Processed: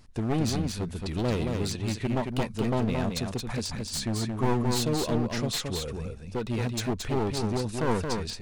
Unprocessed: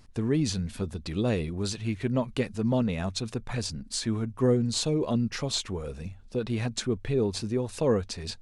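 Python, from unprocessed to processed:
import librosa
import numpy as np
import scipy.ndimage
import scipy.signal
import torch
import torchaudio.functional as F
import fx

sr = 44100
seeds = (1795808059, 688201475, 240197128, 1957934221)

y = np.minimum(x, 2.0 * 10.0 ** (-27.0 / 20.0) - x)
y = y + 10.0 ** (-4.5 / 20.0) * np.pad(y, (int(223 * sr / 1000.0), 0))[:len(y)]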